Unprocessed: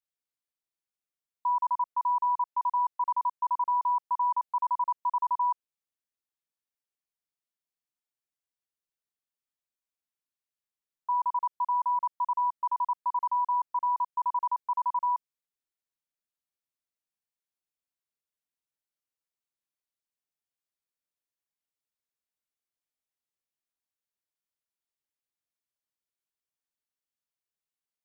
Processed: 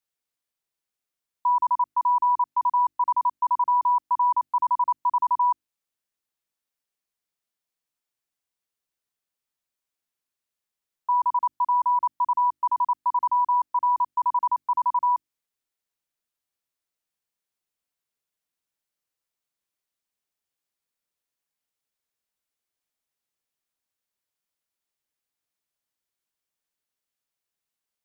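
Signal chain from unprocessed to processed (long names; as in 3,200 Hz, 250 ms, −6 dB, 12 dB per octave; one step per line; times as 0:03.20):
mains-hum notches 50/100/150/200/250/300/350 Hz
level +5.5 dB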